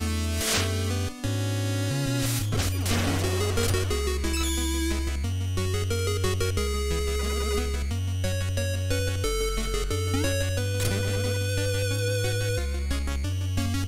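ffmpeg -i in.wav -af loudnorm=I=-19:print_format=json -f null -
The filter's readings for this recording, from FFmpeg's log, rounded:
"input_i" : "-27.1",
"input_tp" : "-10.9",
"input_lra" : "1.1",
"input_thresh" : "-37.1",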